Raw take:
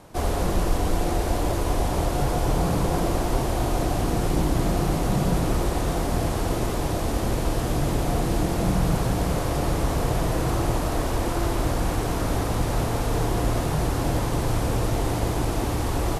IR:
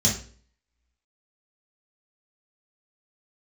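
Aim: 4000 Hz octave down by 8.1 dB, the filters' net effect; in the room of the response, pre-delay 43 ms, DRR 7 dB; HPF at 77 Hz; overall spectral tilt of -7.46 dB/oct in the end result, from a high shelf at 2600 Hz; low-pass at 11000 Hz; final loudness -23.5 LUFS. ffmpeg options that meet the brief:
-filter_complex "[0:a]highpass=77,lowpass=11k,highshelf=f=2.6k:g=-3.5,equalizer=f=4k:t=o:g=-7.5,asplit=2[a][b];[1:a]atrim=start_sample=2205,adelay=43[c];[b][c]afir=irnorm=-1:irlink=0,volume=-18.5dB[d];[a][d]amix=inputs=2:normalize=0,volume=-0.5dB"

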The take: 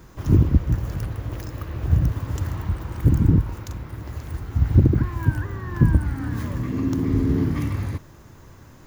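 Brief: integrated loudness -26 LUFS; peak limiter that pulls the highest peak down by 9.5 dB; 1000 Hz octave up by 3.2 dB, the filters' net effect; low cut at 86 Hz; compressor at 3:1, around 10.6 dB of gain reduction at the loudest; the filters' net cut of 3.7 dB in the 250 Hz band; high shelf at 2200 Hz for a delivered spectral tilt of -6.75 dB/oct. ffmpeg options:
-af "highpass=86,equalizer=f=250:t=o:g=-5,equalizer=f=1k:t=o:g=5.5,highshelf=f=2.2k:g=-8,acompressor=threshold=-29dB:ratio=3,volume=10dB,alimiter=limit=-16.5dB:level=0:latency=1"

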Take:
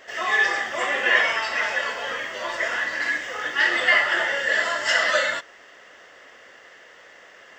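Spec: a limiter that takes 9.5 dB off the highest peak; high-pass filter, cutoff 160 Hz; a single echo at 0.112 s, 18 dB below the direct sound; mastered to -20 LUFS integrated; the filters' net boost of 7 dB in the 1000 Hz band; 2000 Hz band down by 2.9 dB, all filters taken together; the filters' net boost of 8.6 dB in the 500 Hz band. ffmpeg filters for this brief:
-af "highpass=160,equalizer=f=500:t=o:g=8,equalizer=f=1k:t=o:g=8.5,equalizer=f=2k:t=o:g=-6.5,alimiter=limit=-12.5dB:level=0:latency=1,aecho=1:1:112:0.126,volume=2.5dB"

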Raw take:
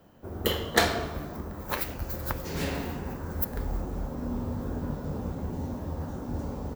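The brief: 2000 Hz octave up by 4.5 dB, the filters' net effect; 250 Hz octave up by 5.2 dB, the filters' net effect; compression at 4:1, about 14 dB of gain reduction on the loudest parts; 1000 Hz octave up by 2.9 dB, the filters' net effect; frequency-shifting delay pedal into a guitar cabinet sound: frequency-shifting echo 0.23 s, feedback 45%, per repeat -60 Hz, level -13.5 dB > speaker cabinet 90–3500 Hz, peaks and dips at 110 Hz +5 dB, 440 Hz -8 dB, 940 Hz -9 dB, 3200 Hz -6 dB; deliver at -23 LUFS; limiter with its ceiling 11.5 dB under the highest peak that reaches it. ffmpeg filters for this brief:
-filter_complex "[0:a]equalizer=f=250:t=o:g=6.5,equalizer=f=1k:t=o:g=8,equalizer=f=2k:t=o:g=3.5,acompressor=threshold=-30dB:ratio=4,alimiter=level_in=2dB:limit=-24dB:level=0:latency=1,volume=-2dB,asplit=5[a][b][c][d][e];[b]adelay=230,afreqshift=-60,volume=-13.5dB[f];[c]adelay=460,afreqshift=-120,volume=-20.4dB[g];[d]adelay=690,afreqshift=-180,volume=-27.4dB[h];[e]adelay=920,afreqshift=-240,volume=-34.3dB[i];[a][f][g][h][i]amix=inputs=5:normalize=0,highpass=90,equalizer=f=110:t=q:w=4:g=5,equalizer=f=440:t=q:w=4:g=-8,equalizer=f=940:t=q:w=4:g=-9,equalizer=f=3.2k:t=q:w=4:g=-6,lowpass=f=3.5k:w=0.5412,lowpass=f=3.5k:w=1.3066,volume=14.5dB"

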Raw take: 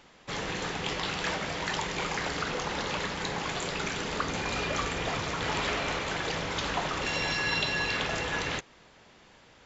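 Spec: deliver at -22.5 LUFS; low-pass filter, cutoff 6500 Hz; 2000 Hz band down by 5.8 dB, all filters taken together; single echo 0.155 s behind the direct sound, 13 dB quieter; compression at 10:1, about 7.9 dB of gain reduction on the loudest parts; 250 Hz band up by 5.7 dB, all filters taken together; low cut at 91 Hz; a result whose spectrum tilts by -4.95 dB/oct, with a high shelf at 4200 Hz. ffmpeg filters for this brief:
-af "highpass=91,lowpass=6.5k,equalizer=f=250:t=o:g=8,equalizer=f=2k:t=o:g=-6.5,highshelf=f=4.2k:g=-5,acompressor=threshold=-35dB:ratio=10,aecho=1:1:155:0.224,volume=16.5dB"

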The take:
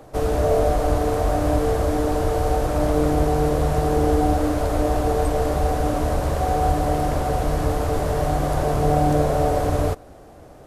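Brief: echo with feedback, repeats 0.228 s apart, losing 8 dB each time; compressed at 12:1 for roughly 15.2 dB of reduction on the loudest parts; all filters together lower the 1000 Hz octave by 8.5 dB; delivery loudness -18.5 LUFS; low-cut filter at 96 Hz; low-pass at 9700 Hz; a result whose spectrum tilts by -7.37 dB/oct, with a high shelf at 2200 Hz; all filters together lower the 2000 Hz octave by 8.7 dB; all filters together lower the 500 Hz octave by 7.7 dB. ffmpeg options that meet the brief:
-af "highpass=96,lowpass=9.7k,equalizer=f=500:t=o:g=-6.5,equalizer=f=1k:t=o:g=-7.5,equalizer=f=2k:t=o:g=-4,highshelf=f=2.2k:g=-8,acompressor=threshold=-35dB:ratio=12,aecho=1:1:228|456|684|912|1140:0.398|0.159|0.0637|0.0255|0.0102,volume=20dB"

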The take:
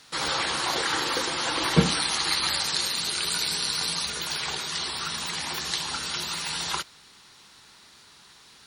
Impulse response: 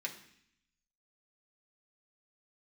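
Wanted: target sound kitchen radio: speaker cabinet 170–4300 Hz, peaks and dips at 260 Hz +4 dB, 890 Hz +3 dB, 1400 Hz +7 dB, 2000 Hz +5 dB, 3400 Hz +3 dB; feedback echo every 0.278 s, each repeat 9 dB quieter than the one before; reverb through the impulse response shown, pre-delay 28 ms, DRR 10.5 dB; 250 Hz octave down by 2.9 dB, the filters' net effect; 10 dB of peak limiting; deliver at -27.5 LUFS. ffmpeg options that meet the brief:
-filter_complex "[0:a]equalizer=f=250:t=o:g=-3.5,alimiter=limit=-18dB:level=0:latency=1,aecho=1:1:278|556|834|1112:0.355|0.124|0.0435|0.0152,asplit=2[a][b];[1:a]atrim=start_sample=2205,adelay=28[c];[b][c]afir=irnorm=-1:irlink=0,volume=-11dB[d];[a][d]amix=inputs=2:normalize=0,highpass=170,equalizer=f=260:t=q:w=4:g=4,equalizer=f=890:t=q:w=4:g=3,equalizer=f=1.4k:t=q:w=4:g=7,equalizer=f=2k:t=q:w=4:g=5,equalizer=f=3.4k:t=q:w=4:g=3,lowpass=f=4.3k:w=0.5412,lowpass=f=4.3k:w=1.3066,volume=-1.5dB"

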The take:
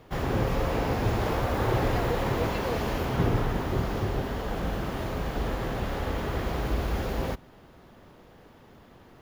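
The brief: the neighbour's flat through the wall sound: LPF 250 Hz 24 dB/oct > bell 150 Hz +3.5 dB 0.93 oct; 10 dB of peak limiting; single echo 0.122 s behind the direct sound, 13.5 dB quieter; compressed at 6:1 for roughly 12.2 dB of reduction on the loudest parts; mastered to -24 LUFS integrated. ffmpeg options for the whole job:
-af "acompressor=threshold=-34dB:ratio=6,alimiter=level_in=8.5dB:limit=-24dB:level=0:latency=1,volume=-8.5dB,lowpass=f=250:w=0.5412,lowpass=f=250:w=1.3066,equalizer=f=150:t=o:w=0.93:g=3.5,aecho=1:1:122:0.211,volume=20dB"

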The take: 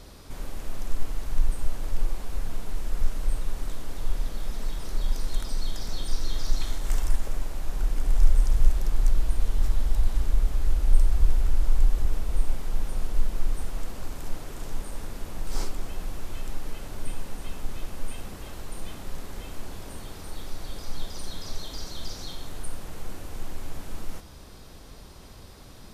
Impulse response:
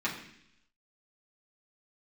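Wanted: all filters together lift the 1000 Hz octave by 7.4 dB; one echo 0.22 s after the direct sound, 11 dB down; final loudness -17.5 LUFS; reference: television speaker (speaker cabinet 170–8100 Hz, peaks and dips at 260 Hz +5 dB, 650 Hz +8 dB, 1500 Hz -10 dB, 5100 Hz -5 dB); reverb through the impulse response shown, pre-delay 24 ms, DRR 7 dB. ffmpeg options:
-filter_complex "[0:a]equalizer=f=1k:t=o:g=8.5,aecho=1:1:220:0.282,asplit=2[a][b];[1:a]atrim=start_sample=2205,adelay=24[c];[b][c]afir=irnorm=-1:irlink=0,volume=-15dB[d];[a][d]amix=inputs=2:normalize=0,highpass=f=170:w=0.5412,highpass=f=170:w=1.3066,equalizer=f=260:t=q:w=4:g=5,equalizer=f=650:t=q:w=4:g=8,equalizer=f=1.5k:t=q:w=4:g=-10,equalizer=f=5.1k:t=q:w=4:g=-5,lowpass=f=8.1k:w=0.5412,lowpass=f=8.1k:w=1.3066,volume=21.5dB"

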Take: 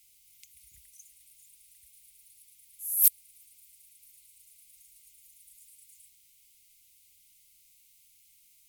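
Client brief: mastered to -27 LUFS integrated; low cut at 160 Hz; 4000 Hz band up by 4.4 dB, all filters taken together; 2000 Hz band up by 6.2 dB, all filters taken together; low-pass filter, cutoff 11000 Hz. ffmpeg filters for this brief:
-af "highpass=160,lowpass=11k,equalizer=f=2k:t=o:g=6,equalizer=f=4k:t=o:g=4.5,volume=1dB"

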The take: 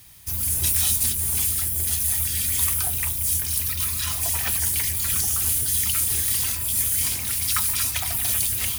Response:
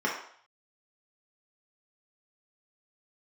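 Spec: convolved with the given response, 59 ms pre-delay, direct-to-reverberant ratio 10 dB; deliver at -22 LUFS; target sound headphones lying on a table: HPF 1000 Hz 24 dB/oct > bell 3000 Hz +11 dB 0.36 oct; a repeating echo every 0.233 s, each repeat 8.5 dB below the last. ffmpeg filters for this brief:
-filter_complex "[0:a]aecho=1:1:233|466|699|932:0.376|0.143|0.0543|0.0206,asplit=2[a][b];[1:a]atrim=start_sample=2205,adelay=59[c];[b][c]afir=irnorm=-1:irlink=0,volume=-21dB[d];[a][d]amix=inputs=2:normalize=0,highpass=f=1k:w=0.5412,highpass=f=1k:w=1.3066,equalizer=f=3k:t=o:w=0.36:g=11,volume=-2.5dB"

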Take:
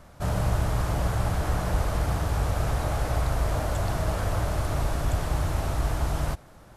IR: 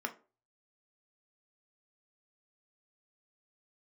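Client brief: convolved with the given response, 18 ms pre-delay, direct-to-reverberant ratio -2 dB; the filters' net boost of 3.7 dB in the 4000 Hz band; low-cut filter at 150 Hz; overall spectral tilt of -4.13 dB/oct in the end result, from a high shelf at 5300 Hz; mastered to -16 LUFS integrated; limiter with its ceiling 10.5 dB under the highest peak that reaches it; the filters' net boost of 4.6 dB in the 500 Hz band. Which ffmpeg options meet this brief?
-filter_complex "[0:a]highpass=150,equalizer=f=500:t=o:g=6,equalizer=f=4k:t=o:g=8,highshelf=f=5.3k:g=-8,alimiter=level_in=3dB:limit=-24dB:level=0:latency=1,volume=-3dB,asplit=2[a][b];[1:a]atrim=start_sample=2205,adelay=18[c];[b][c]afir=irnorm=-1:irlink=0,volume=-1dB[d];[a][d]amix=inputs=2:normalize=0,volume=16.5dB"

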